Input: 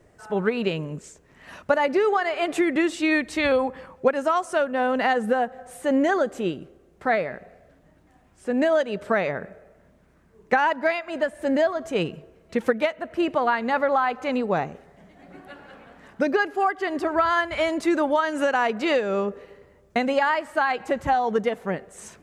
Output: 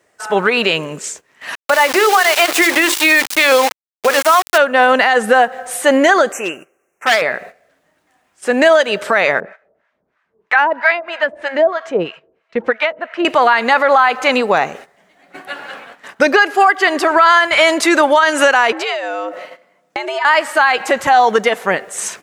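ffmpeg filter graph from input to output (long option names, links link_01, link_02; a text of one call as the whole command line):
ffmpeg -i in.wav -filter_complex "[0:a]asettb=1/sr,asplit=3[link_01][link_02][link_03];[link_01]atrim=end=1.554[link_04];[link_02]atrim=start=1.55:end=4.58,asetpts=PTS-STARTPTS,afade=type=in:duration=0.004:curve=qsin,afade=type=out:start_time=3.026:duration=0.004:curve=qsin,bandreject=frequency=50:width_type=h:width=6,bandreject=frequency=100:width_type=h:width=6,bandreject=frequency=150:width_type=h:width=6,bandreject=frequency=200:width_type=h:width=6,bandreject=frequency=250:width_type=h:width=6,bandreject=frequency=300:width_type=h:width=6,bandreject=frequency=350:width_type=h:width=6,bandreject=frequency=400:width_type=h:width=6,bandreject=frequency=450:width_type=h:width=6,bandreject=frequency=500:width_type=h:width=6,aeval=exprs='val(0)*gte(abs(val(0)),0.0335)':channel_layout=same,highpass=frequency=200:poles=1[link_05];[link_03]atrim=start=4.576[link_06];[link_04][link_05]acrossfade=duration=0.004:curve1=hsin:curve2=qsin[link_07];[link_07][link_06]acrossfade=duration=0.004:curve1=qsin:curve2=hsin,asettb=1/sr,asplit=3[link_08][link_09][link_10];[link_08]atrim=end=6.324[link_11];[link_09]atrim=start=6.32:end=7.22,asetpts=PTS-STARTPTS,afade=type=in:duration=0.004:curve=qsin,afade=type=out:start_time=0.896:duration=0.004:curve=qsin,asuperstop=centerf=4000:order=12:qfactor=1.4,lowshelf=frequency=450:gain=-11,volume=24.5dB,asoftclip=hard,volume=-24.5dB[link_12];[link_10]atrim=start=7.216[link_13];[link_11][link_12]acrossfade=duration=0.004:curve1=hsin:curve2=qsin[link_14];[link_14][link_13]acrossfade=duration=0.004:curve1=qsin:curve2=hsin,asettb=1/sr,asplit=3[link_15][link_16][link_17];[link_15]atrim=end=9.404[link_18];[link_16]atrim=start=9.4:end=13.25,asetpts=PTS-STARTPTS,afade=type=in:duration=0.004:curve=qsin,afade=type=out:start_time=3.846:duration=0.004:curve=qsin,lowpass=3000,acrossover=split=770[link_19][link_20];[link_19]aeval=exprs='val(0)*(1-1/2+1/2*cos(2*PI*3.1*n/s))':channel_layout=same[link_21];[link_20]aeval=exprs='val(0)*(1-1/2-1/2*cos(2*PI*3.1*n/s))':channel_layout=same[link_22];[link_21][link_22]amix=inputs=2:normalize=0[link_23];[link_17]atrim=start=13.246[link_24];[link_18][link_23]acrossfade=duration=0.004:curve1=hsin:curve2=qsin[link_25];[link_25][link_24]acrossfade=duration=0.004:curve1=qsin:curve2=hsin,asettb=1/sr,asplit=3[link_26][link_27][link_28];[link_26]atrim=end=18.724[link_29];[link_27]atrim=start=18.72:end=20.25,asetpts=PTS-STARTPTS,afade=type=in:duration=0.004:curve=qsin,afade=type=out:start_time=1.526:duration=0.004:curve=qsin,highshelf=frequency=5300:gain=-5,acompressor=threshold=-31dB:ratio=10:attack=3.2:release=140:knee=1:detection=peak,afreqshift=110[link_30];[link_28]atrim=start=20.246[link_31];[link_29][link_30]acrossfade=duration=0.004:curve1=hsin:curve2=qsin[link_32];[link_32][link_31]acrossfade=duration=0.004:curve1=qsin:curve2=hsin,highpass=frequency=1400:poles=1,agate=range=-14dB:threshold=-53dB:ratio=16:detection=peak,alimiter=level_in=21.5dB:limit=-1dB:release=50:level=0:latency=1,volume=-1dB" out.wav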